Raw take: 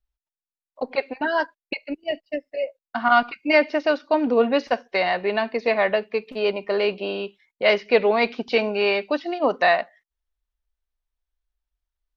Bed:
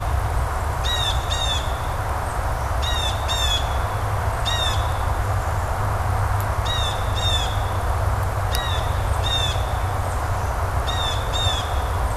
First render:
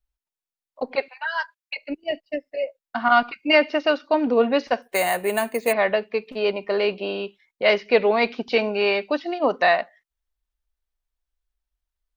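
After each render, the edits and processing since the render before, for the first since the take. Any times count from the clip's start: 1.08–1.76 inverse Chebyshev high-pass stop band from 220 Hz, stop band 70 dB; 3.5–4.06 small resonant body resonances 1300/2800 Hz, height 10 dB; 4.82–5.73 careless resampling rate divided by 4×, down filtered, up hold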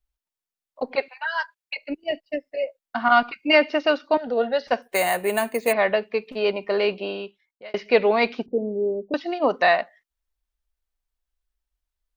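4.17–4.68 fixed phaser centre 1600 Hz, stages 8; 6.93–7.74 fade out; 8.46–9.14 inverse Chebyshev band-stop 1800–9800 Hz, stop band 70 dB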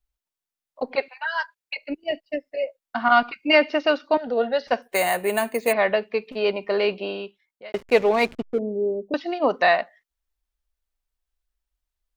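7.72–8.59 backlash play -29 dBFS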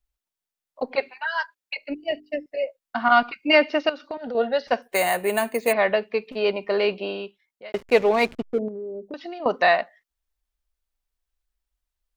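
0.92–2.46 notches 50/100/150/200/250/300/350/400 Hz; 3.89–4.35 compressor 12:1, threshold -27 dBFS; 8.68–9.46 compressor, threshold -31 dBFS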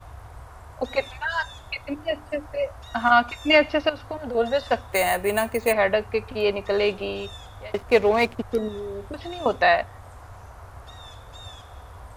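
add bed -20 dB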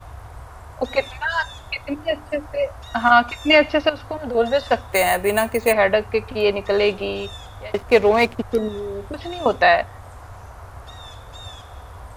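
gain +4 dB; limiter -2 dBFS, peak gain reduction 1.5 dB

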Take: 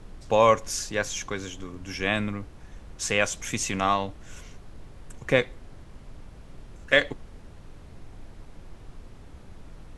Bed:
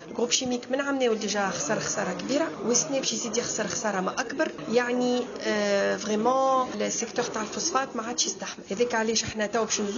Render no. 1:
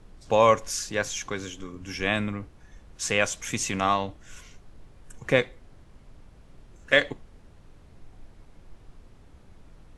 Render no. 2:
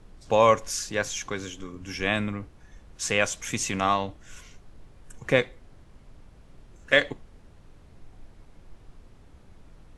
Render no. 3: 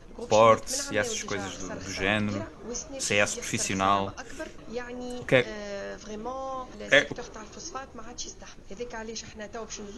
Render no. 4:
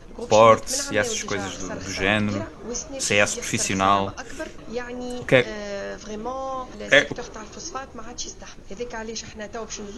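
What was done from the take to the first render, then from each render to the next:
noise print and reduce 6 dB
nothing audible
add bed -12 dB
gain +5 dB; limiter -1 dBFS, peak gain reduction 1.5 dB

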